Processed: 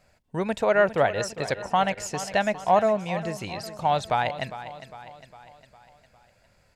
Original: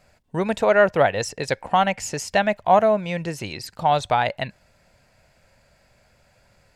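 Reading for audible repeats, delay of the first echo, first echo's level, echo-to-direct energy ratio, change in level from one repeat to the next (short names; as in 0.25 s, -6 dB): 4, 0.405 s, -13.5 dB, -12.0 dB, -5.5 dB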